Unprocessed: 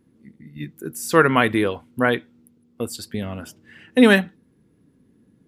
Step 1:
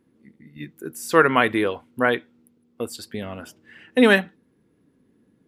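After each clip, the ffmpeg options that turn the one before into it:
-af "bass=f=250:g=-7,treble=f=4k:g=-4"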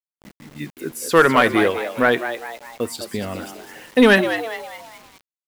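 -filter_complex "[0:a]acontrast=66,asplit=2[a][b];[b]asplit=5[c][d][e][f][g];[c]adelay=204,afreqshift=110,volume=-10dB[h];[d]adelay=408,afreqshift=220,volume=-17.1dB[i];[e]adelay=612,afreqshift=330,volume=-24.3dB[j];[f]adelay=816,afreqshift=440,volume=-31.4dB[k];[g]adelay=1020,afreqshift=550,volume=-38.5dB[l];[h][i][j][k][l]amix=inputs=5:normalize=0[m];[a][m]amix=inputs=2:normalize=0,acrusher=bits=6:mix=0:aa=0.000001,volume=-2dB"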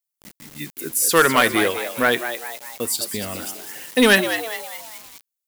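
-af "crystalizer=i=4:c=0,volume=-3.5dB"

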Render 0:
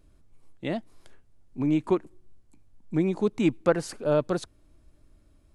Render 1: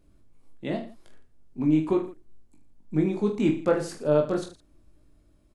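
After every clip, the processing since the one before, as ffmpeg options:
-af "equalizer=f=280:t=o:w=2.1:g=3.5,aecho=1:1:20|45|76.25|115.3|164.1:0.631|0.398|0.251|0.158|0.1,volume=-4dB"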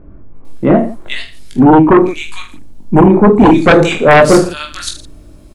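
-filter_complex "[0:a]acrossover=split=1800[a][b];[b]adelay=450[c];[a][c]amix=inputs=2:normalize=0,aeval=exprs='0.355*sin(PI/2*3.98*val(0)/0.355)':c=same,volume=7.5dB"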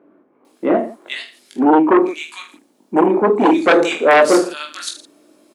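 -af "highpass=f=280:w=0.5412,highpass=f=280:w=1.3066,volume=-4.5dB"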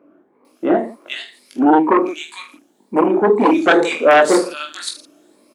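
-af "afftfilt=real='re*pow(10,7/40*sin(2*PI*(0.93*log(max(b,1)*sr/1024/100)/log(2)-(2)*(pts-256)/sr)))':imag='im*pow(10,7/40*sin(2*PI*(0.93*log(max(b,1)*sr/1024/100)/log(2)-(2)*(pts-256)/sr)))':win_size=1024:overlap=0.75,volume=-1dB"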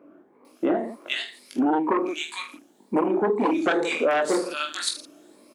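-af "acompressor=threshold=-20dB:ratio=6"

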